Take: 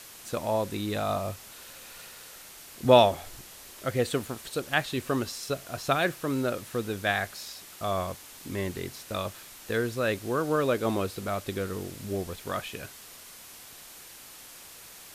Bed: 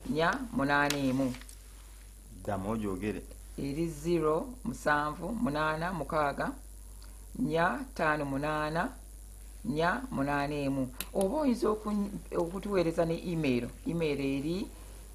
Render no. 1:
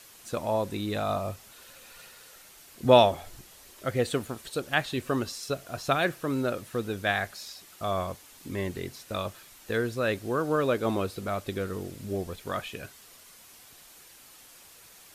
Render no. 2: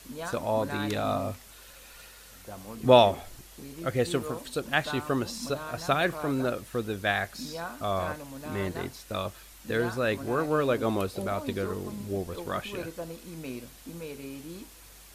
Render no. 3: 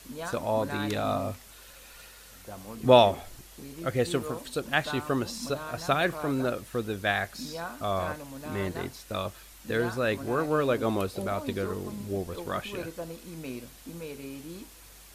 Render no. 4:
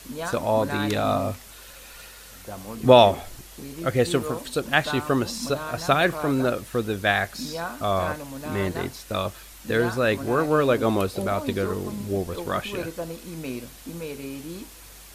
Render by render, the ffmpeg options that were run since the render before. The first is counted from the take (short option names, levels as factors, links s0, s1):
-af "afftdn=nr=6:nf=-48"
-filter_complex "[1:a]volume=0.355[s0];[0:a][s0]amix=inputs=2:normalize=0"
-af anull
-af "volume=1.88,alimiter=limit=0.794:level=0:latency=1"